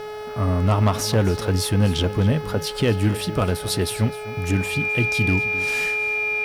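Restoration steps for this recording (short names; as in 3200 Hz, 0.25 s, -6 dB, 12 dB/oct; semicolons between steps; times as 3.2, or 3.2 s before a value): clip repair -11 dBFS; de-hum 424 Hz, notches 14; notch 2400 Hz, Q 30; inverse comb 0.258 s -16 dB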